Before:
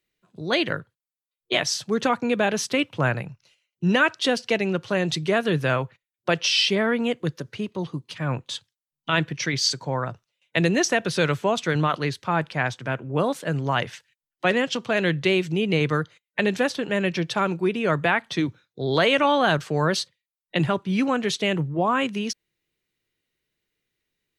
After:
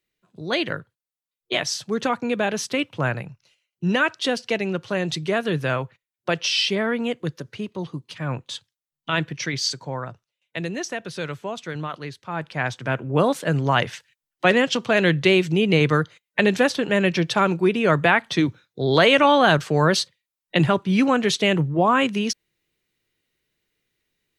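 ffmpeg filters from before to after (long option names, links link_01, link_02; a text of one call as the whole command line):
ffmpeg -i in.wav -af "volume=11dB,afade=type=out:start_time=9.43:duration=1.2:silence=0.446684,afade=type=in:start_time=12.28:duration=0.74:silence=0.251189" out.wav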